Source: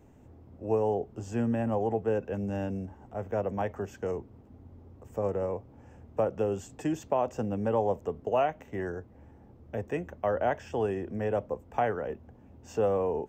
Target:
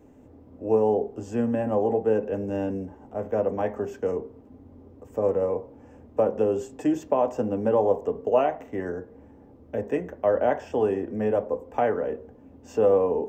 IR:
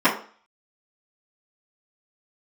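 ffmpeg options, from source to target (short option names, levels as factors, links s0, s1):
-filter_complex "[0:a]equalizer=f=470:t=o:w=0.9:g=5.5,asplit=2[s0][s1];[1:a]atrim=start_sample=2205,lowshelf=f=190:g=9[s2];[s1][s2]afir=irnorm=-1:irlink=0,volume=0.0473[s3];[s0][s3]amix=inputs=2:normalize=0"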